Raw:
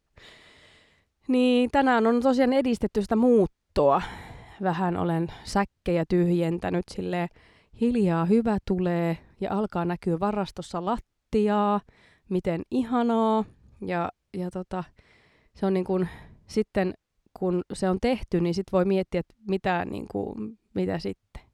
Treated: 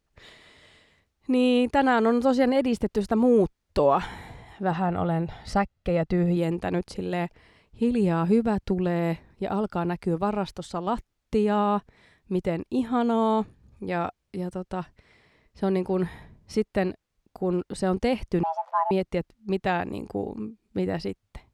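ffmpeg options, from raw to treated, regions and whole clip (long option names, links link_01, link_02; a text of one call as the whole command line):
ffmpeg -i in.wav -filter_complex "[0:a]asettb=1/sr,asplit=3[link_01][link_02][link_03];[link_01]atrim=end=4.714[link_04];[link_02]atrim=start=4.71:end=6.37,asetpts=PTS-STARTPTS,afade=type=in:duration=0.004:curve=qsin,afade=type=out:start_time=1.656:duration=0.004:curve=qsin,aemphasis=mode=reproduction:type=cd,aecho=1:1:1.5:0.4,atrim=end_sample=73206[link_05];[link_03]atrim=start=6.366[link_06];[link_04][link_05]acrossfade=duration=0.004:curve1=hsin:curve2=qsin[link_07];[link_07][link_06]acrossfade=duration=0.004:curve1=qsin:curve2=hsin,asettb=1/sr,asplit=3[link_08][link_09][link_10];[link_08]atrim=end=18.434[link_11];[link_09]atrim=start=18.43:end=18.91,asetpts=PTS-STARTPTS,afade=type=in:duration=0.004:curve=qsin,afade=type=out:start_time=0.476:duration=0.004:curve=qsin,aeval=exprs='val(0)+0.5*0.0133*sgn(val(0))':channel_layout=same,bandpass=frequency=420:width_type=q:width=1.3,afreqshift=470[link_12];[link_10]atrim=start=18.906[link_13];[link_11][link_12]acrossfade=duration=0.004:curve1=hsin:curve2=qsin[link_14];[link_14][link_13]acrossfade=duration=0.004:curve1=qsin:curve2=hsin" out.wav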